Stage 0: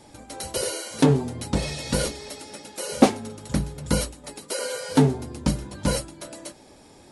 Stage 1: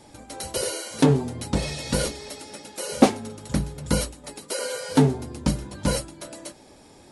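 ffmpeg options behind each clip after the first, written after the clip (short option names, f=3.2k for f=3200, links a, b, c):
-af anull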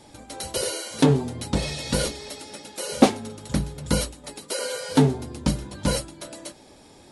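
-af "equalizer=f=3.6k:w=2.1:g=3"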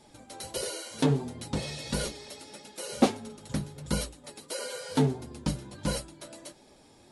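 -af "flanger=delay=4.7:depth=4.2:regen=-46:speed=1.5:shape=sinusoidal,volume=-3dB"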